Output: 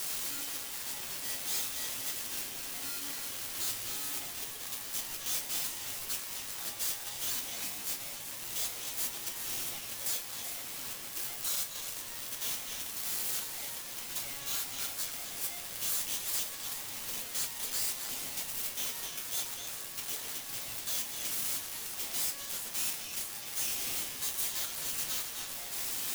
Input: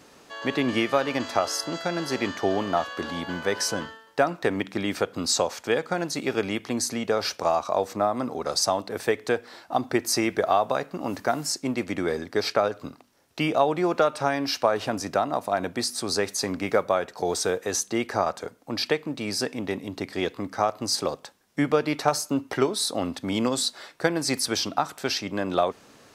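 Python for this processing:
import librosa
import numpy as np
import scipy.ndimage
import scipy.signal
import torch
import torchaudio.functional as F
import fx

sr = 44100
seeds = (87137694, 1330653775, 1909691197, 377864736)

y = np.sign(x) * np.sqrt(np.mean(np.square(x)))
y = F.preemphasis(torch.from_numpy(y), 0.97).numpy()
y = fx.resonator_bank(y, sr, root=42, chord='major', decay_s=0.21)
y = fx.echo_stepped(y, sr, ms=127, hz=1500.0, octaves=1.4, feedback_pct=70, wet_db=-1.0)
y = y * np.sign(np.sin(2.0 * np.pi * 1400.0 * np.arange(len(y)) / sr))
y = y * librosa.db_to_amplitude(4.0)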